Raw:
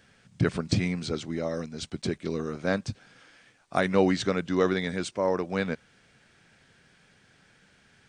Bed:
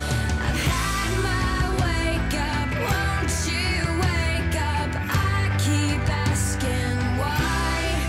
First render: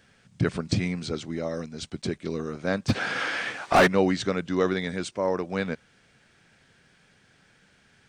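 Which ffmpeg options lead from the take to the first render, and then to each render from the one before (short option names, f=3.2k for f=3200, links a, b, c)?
-filter_complex "[0:a]asplit=3[a][b][c];[a]afade=t=out:st=2.88:d=0.02[d];[b]asplit=2[e][f];[f]highpass=f=720:p=1,volume=38dB,asoftclip=type=tanh:threshold=-8dB[g];[e][g]amix=inputs=2:normalize=0,lowpass=f=1.7k:p=1,volume=-6dB,afade=t=in:st=2.88:d=0.02,afade=t=out:st=3.86:d=0.02[h];[c]afade=t=in:st=3.86:d=0.02[i];[d][h][i]amix=inputs=3:normalize=0"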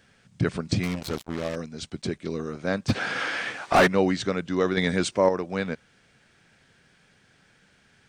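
-filter_complex "[0:a]asettb=1/sr,asplit=3[a][b][c];[a]atrim=end=0.834[d];[b]atrim=start=0.83:end=1.56,asetpts=PTS-STARTPTS,afade=t=in:d=0.004:c=qsin,afade=t=out:st=0.726:d=0.004:c=qsin,acrusher=bits=4:mix=0:aa=0.5[e];[c]atrim=start=1.556[f];[d][e]acrossfade=d=0.004:c1=hsin:c2=qsin[g];[g][f]acrossfade=d=0.004:c1=qsin:c2=hsin,asettb=1/sr,asplit=3[h][i][j];[h]atrim=end=4.774[k];[i]atrim=start=4.77:end=5.29,asetpts=PTS-STARTPTS,afade=t=in:d=0.004:c=qsin,afade=t=out:st=0.516:d=0.004:c=qsin,acontrast=69[l];[j]atrim=start=5.286[m];[k][l]acrossfade=d=0.004:c1=hsin:c2=qsin[n];[n][m]acrossfade=d=0.004:c1=qsin:c2=hsin"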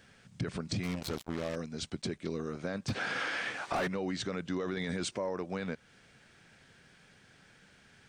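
-af "alimiter=limit=-19dB:level=0:latency=1:release=19,acompressor=threshold=-36dB:ratio=2"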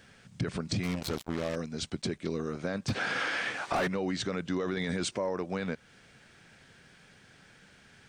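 -af "volume=3dB"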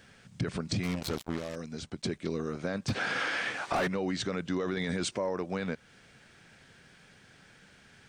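-filter_complex "[0:a]asettb=1/sr,asplit=3[a][b][c];[a]atrim=end=1.374[d];[b]atrim=start=1.37:end=2.04,asetpts=PTS-STARTPTS,afade=t=in:d=0.004:c=qsin,afade=t=out:st=0.666:d=0.004:c=qsin,acrossover=split=1800|4800[e][f][g];[e]acompressor=threshold=-35dB:ratio=4[h];[f]acompressor=threshold=-52dB:ratio=4[i];[g]acompressor=threshold=-49dB:ratio=4[j];[h][i][j]amix=inputs=3:normalize=0[k];[c]atrim=start=2.036[l];[d][k]acrossfade=d=0.004:c1=hsin:c2=qsin[m];[m][l]acrossfade=d=0.004:c1=qsin:c2=hsin"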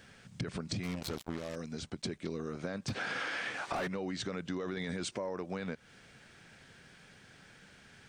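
-af "acompressor=threshold=-36dB:ratio=2.5"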